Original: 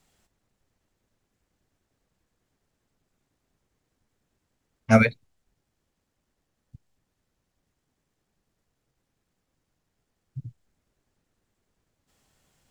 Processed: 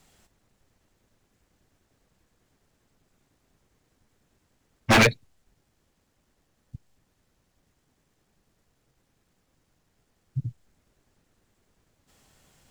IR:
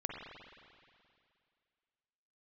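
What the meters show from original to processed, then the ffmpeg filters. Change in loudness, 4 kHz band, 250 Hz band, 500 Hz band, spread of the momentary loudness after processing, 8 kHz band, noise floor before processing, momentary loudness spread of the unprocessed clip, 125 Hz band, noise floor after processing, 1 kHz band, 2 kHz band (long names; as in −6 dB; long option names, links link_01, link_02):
−2.0 dB, +16.5 dB, −3.0 dB, −1.0 dB, 22 LU, +12.0 dB, −80 dBFS, 4 LU, −0.5 dB, −73 dBFS, +4.0 dB, +4.0 dB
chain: -af "aeval=exprs='0.126*(abs(mod(val(0)/0.126+3,4)-2)-1)':channel_layout=same,volume=7dB"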